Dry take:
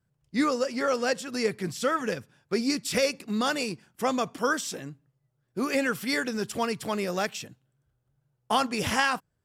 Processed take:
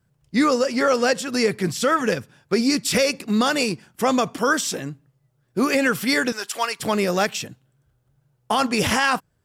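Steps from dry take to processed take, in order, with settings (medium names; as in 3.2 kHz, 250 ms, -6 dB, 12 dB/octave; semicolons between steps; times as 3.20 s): 6.32–6.80 s: high-pass 850 Hz 12 dB/octave; peak limiter -18 dBFS, peak gain reduction 8 dB; trim +8.5 dB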